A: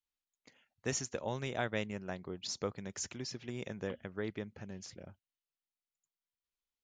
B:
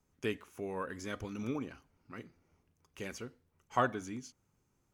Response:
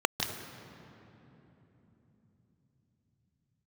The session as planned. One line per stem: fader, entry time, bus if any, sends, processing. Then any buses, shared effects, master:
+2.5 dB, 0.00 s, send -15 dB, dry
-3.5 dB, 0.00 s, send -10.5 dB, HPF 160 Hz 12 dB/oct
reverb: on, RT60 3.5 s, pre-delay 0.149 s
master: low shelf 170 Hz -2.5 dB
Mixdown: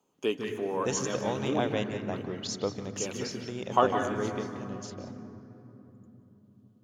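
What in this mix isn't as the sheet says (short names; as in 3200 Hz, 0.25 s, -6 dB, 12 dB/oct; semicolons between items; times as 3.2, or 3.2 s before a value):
stem B: send -10.5 dB -> -2 dB; master: missing low shelf 170 Hz -2.5 dB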